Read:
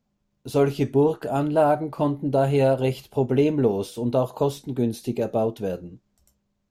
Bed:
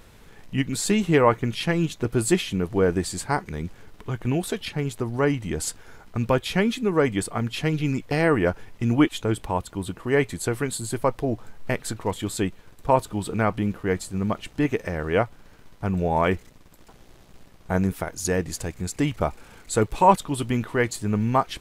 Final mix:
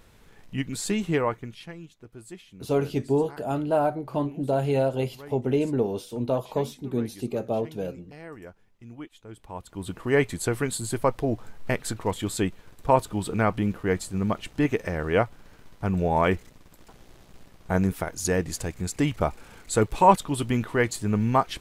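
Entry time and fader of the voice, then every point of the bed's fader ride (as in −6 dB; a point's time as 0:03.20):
2.15 s, −4.0 dB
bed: 0:01.12 −5 dB
0:01.92 −22 dB
0:09.21 −22 dB
0:09.96 −0.5 dB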